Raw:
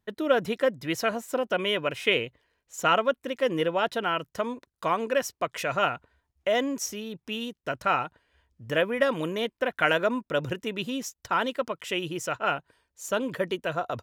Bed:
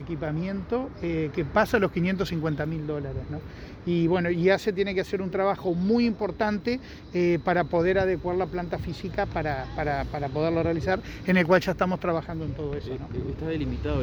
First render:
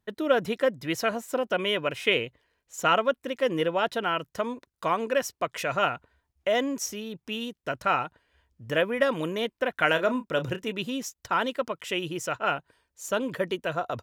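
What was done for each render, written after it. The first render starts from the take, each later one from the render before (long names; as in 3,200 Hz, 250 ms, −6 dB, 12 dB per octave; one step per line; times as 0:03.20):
0:09.92–0:10.72: double-tracking delay 32 ms −11 dB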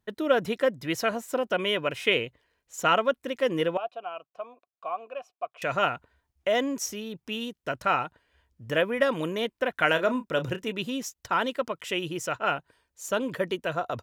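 0:03.77–0:05.62: formant filter a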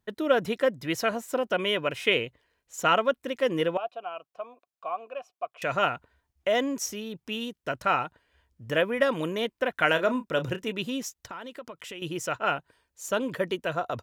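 0:11.13–0:12.02: downward compressor 4 to 1, threshold −38 dBFS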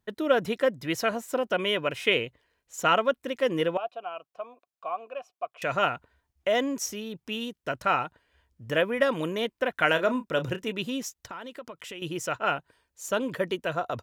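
no processing that can be heard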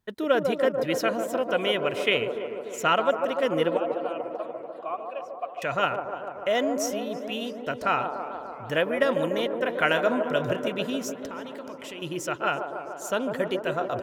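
delay with a band-pass on its return 147 ms, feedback 75%, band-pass 510 Hz, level −4.5 dB
feedback echo with a swinging delay time 330 ms, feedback 64%, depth 147 cents, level −22.5 dB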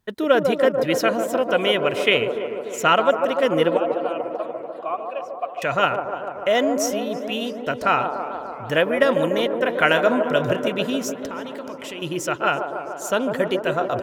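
level +5.5 dB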